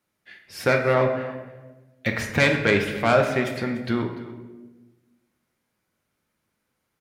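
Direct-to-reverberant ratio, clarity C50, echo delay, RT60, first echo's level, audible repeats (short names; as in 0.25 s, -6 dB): 2.5 dB, 6.5 dB, 0.293 s, 1.2 s, -17.5 dB, 1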